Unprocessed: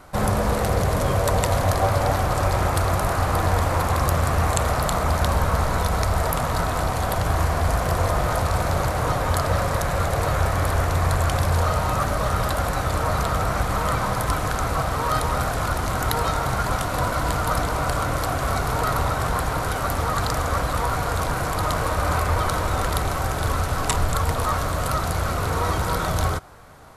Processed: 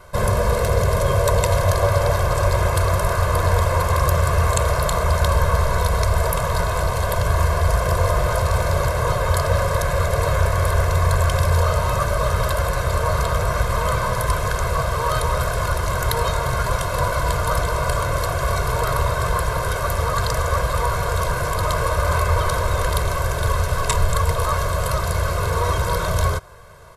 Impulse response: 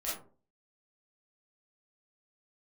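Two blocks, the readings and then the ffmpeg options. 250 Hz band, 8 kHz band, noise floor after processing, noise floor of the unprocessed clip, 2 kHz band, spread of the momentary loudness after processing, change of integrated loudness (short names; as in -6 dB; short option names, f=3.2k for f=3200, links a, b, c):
-3.0 dB, +2.0 dB, -24 dBFS, -26 dBFS, +2.5 dB, 4 LU, +2.5 dB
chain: -af "aecho=1:1:1.9:0.94,volume=-1dB"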